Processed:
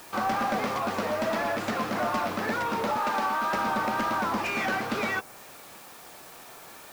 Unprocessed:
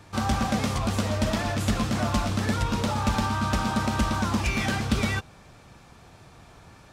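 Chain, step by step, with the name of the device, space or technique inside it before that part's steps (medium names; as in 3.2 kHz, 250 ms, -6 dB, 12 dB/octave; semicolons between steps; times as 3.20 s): 2.97–3.54 s: high-pass 260 Hz 12 dB/octave; tape answering machine (band-pass 370–3400 Hz; saturation -25 dBFS, distortion -16 dB; wow and flutter; white noise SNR 21 dB); dynamic bell 3.3 kHz, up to -6 dB, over -52 dBFS, Q 1.6; trim +5 dB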